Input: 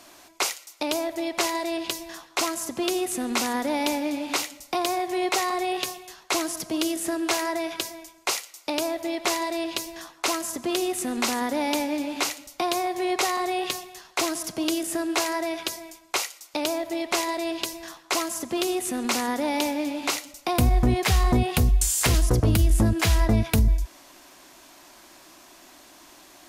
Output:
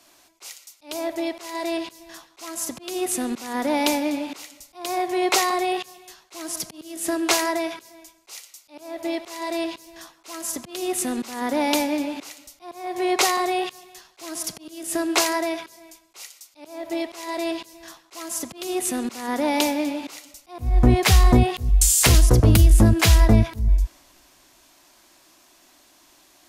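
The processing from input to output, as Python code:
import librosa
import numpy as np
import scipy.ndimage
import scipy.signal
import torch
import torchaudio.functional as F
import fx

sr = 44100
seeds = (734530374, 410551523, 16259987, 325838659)

y = fx.auto_swell(x, sr, attack_ms=262.0)
y = fx.band_widen(y, sr, depth_pct=40)
y = F.gain(torch.from_numpy(y), 3.0).numpy()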